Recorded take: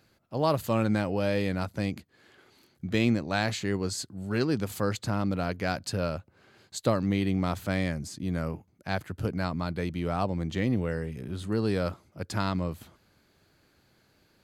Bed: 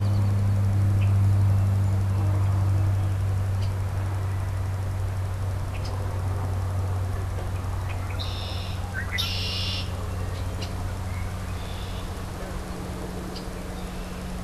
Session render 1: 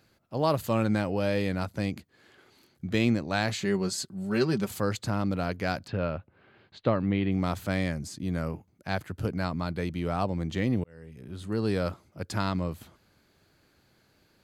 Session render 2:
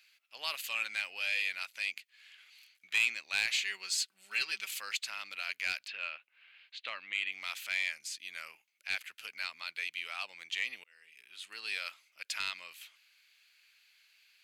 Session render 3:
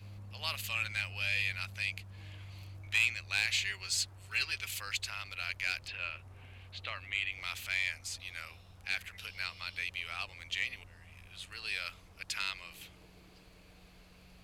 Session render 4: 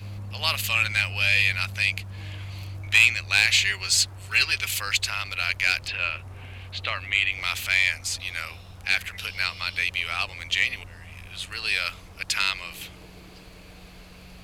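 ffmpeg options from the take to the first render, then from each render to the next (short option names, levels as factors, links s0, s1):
-filter_complex "[0:a]asettb=1/sr,asplit=3[s0][s1][s2];[s0]atrim=end=3.584[s3];[s1]atrim=start=3.58:end=4.71,asetpts=PTS-STARTPTS,afade=t=in:d=0.004:c=qsin,afade=t=out:st=1.126:d=0.004:c=qsin,aecho=1:1:5.2:0.65,atrim=end_sample=49833[s4];[s2]atrim=start=4.706[s5];[s3][s4]acrossfade=d=0.004:c1=hsin:c2=qsin[s6];[s6][s5]acrossfade=d=0.004:c1=qsin:c2=hsin,asplit=3[s7][s8][s9];[s7]afade=t=out:st=5.86:d=0.02[s10];[s8]lowpass=f=3300:w=0.5412,lowpass=f=3300:w=1.3066,afade=t=in:st=5.86:d=0.02,afade=t=out:st=7.31:d=0.02[s11];[s9]afade=t=in:st=7.31:d=0.02[s12];[s10][s11][s12]amix=inputs=3:normalize=0,asplit=2[s13][s14];[s13]atrim=end=10.84,asetpts=PTS-STARTPTS,afade=t=out:st=10.836:d=0.004:c=hsin[s15];[s14]atrim=start=10.84,asetpts=PTS-STARTPTS,afade=t=in:d=0.85[s16];[s15][s16]concat=n=2:v=0:a=1"
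-af "highpass=f=2500:t=q:w=3.3,asoftclip=type=tanh:threshold=0.1"
-filter_complex "[1:a]volume=0.0501[s0];[0:a][s0]amix=inputs=2:normalize=0"
-af "volume=3.98"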